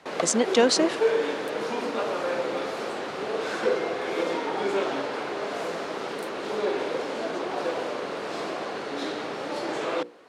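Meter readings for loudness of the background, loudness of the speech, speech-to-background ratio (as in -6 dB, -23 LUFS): -29.0 LUFS, -22.5 LUFS, 6.5 dB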